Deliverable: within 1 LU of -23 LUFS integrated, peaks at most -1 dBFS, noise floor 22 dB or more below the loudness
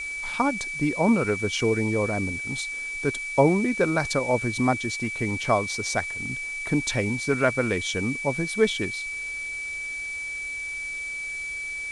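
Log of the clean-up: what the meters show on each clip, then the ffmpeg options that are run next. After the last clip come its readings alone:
steady tone 2.3 kHz; tone level -30 dBFS; noise floor -33 dBFS; noise floor target -48 dBFS; loudness -25.5 LUFS; peak level -6.0 dBFS; loudness target -23.0 LUFS
-> -af "bandreject=f=2300:w=30"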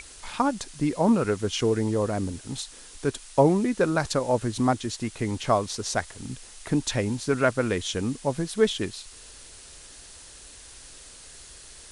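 steady tone not found; noise floor -47 dBFS; noise floor target -48 dBFS
-> -af "afftdn=nr=6:nf=-47"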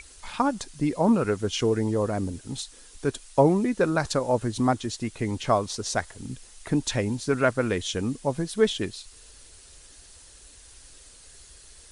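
noise floor -51 dBFS; loudness -26.0 LUFS; peak level -6.5 dBFS; loudness target -23.0 LUFS
-> -af "volume=1.41"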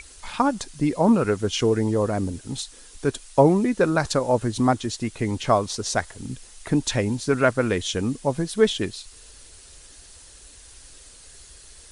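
loudness -23.0 LUFS; peak level -3.5 dBFS; noise floor -48 dBFS

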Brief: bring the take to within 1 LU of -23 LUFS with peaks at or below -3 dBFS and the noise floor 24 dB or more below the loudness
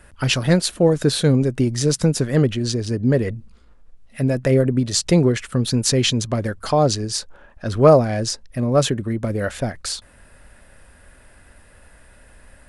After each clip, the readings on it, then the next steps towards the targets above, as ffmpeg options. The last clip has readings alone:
loudness -19.5 LUFS; peak level -1.5 dBFS; loudness target -23.0 LUFS
-> -af "volume=0.668"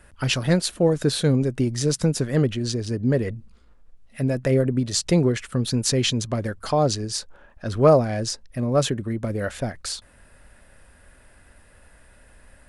loudness -23.0 LUFS; peak level -5.0 dBFS; noise floor -53 dBFS

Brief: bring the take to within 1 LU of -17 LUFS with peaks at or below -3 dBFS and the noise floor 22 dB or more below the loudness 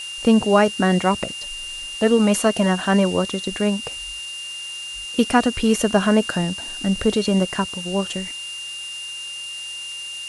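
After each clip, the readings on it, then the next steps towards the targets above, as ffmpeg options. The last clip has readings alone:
steady tone 2.8 kHz; tone level -30 dBFS; noise floor -32 dBFS; noise floor target -44 dBFS; loudness -21.5 LUFS; peak level -3.0 dBFS; loudness target -17.0 LUFS
-> -af "bandreject=f=2800:w=30"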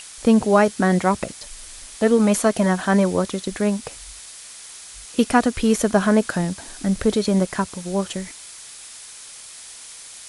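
steady tone not found; noise floor -40 dBFS; noise floor target -42 dBFS
-> -af "afftdn=nr=6:nf=-40"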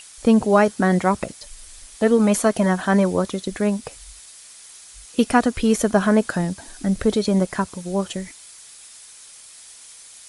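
noise floor -44 dBFS; loudness -20.0 LUFS; peak level -3.0 dBFS; loudness target -17.0 LUFS
-> -af "volume=1.41,alimiter=limit=0.708:level=0:latency=1"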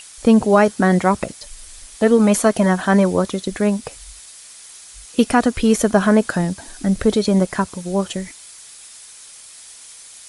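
loudness -17.5 LUFS; peak level -3.0 dBFS; noise floor -41 dBFS

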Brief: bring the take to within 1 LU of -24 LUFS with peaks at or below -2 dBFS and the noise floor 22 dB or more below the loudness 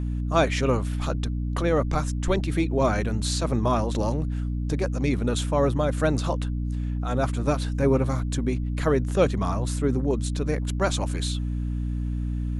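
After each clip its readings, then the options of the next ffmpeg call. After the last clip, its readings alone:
hum 60 Hz; highest harmonic 300 Hz; hum level -25 dBFS; loudness -25.5 LUFS; peak level -7.5 dBFS; loudness target -24.0 LUFS
-> -af "bandreject=f=60:t=h:w=6,bandreject=f=120:t=h:w=6,bandreject=f=180:t=h:w=6,bandreject=f=240:t=h:w=6,bandreject=f=300:t=h:w=6"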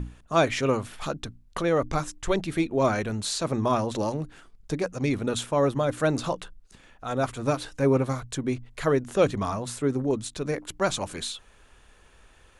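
hum not found; loudness -27.0 LUFS; peak level -9.0 dBFS; loudness target -24.0 LUFS
-> -af "volume=1.41"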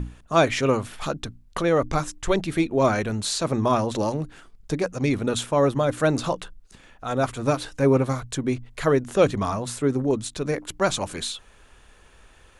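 loudness -24.0 LUFS; peak level -6.0 dBFS; noise floor -53 dBFS

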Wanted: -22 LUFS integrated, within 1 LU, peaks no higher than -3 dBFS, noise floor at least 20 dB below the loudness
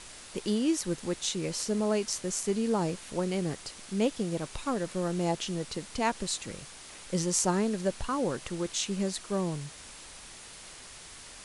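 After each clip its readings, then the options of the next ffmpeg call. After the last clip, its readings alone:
noise floor -48 dBFS; noise floor target -51 dBFS; loudness -31.0 LUFS; peak level -9.0 dBFS; loudness target -22.0 LUFS
-> -af "afftdn=nr=6:nf=-48"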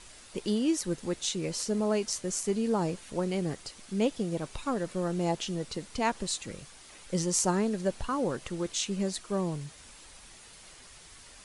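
noise floor -52 dBFS; loudness -31.0 LUFS; peak level -9.0 dBFS; loudness target -22.0 LUFS
-> -af "volume=2.82,alimiter=limit=0.708:level=0:latency=1"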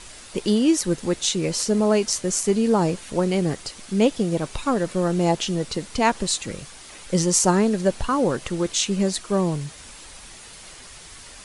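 loudness -22.5 LUFS; peak level -3.0 dBFS; noise floor -43 dBFS

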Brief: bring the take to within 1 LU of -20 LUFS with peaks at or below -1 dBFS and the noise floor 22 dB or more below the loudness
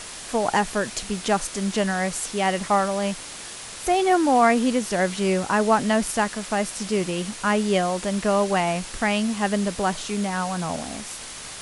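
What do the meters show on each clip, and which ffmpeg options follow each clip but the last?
noise floor -38 dBFS; noise floor target -46 dBFS; loudness -23.5 LUFS; peak level -7.0 dBFS; loudness target -20.0 LUFS
-> -af "afftdn=nr=8:nf=-38"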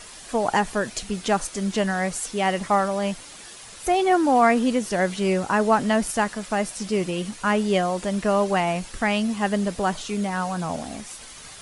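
noise floor -43 dBFS; noise floor target -46 dBFS
-> -af "afftdn=nr=6:nf=-43"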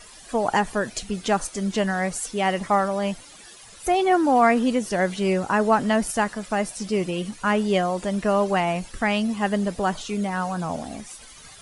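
noise floor -46 dBFS; loudness -23.5 LUFS; peak level -7.0 dBFS; loudness target -20.0 LUFS
-> -af "volume=1.5"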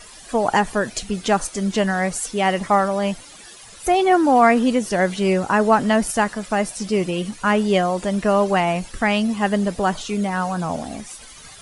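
loudness -20.0 LUFS; peak level -3.5 dBFS; noise floor -42 dBFS

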